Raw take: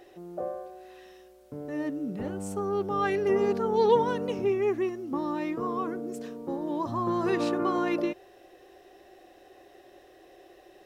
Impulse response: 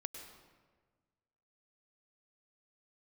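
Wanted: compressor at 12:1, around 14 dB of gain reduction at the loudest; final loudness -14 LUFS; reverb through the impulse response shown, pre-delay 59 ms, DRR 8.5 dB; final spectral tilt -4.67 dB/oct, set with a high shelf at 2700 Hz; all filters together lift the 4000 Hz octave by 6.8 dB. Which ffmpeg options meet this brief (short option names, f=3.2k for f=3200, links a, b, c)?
-filter_complex "[0:a]highshelf=f=2.7k:g=5,equalizer=f=4k:t=o:g=4.5,acompressor=threshold=-30dB:ratio=12,asplit=2[a][b];[1:a]atrim=start_sample=2205,adelay=59[c];[b][c]afir=irnorm=-1:irlink=0,volume=-6dB[d];[a][d]amix=inputs=2:normalize=0,volume=20.5dB"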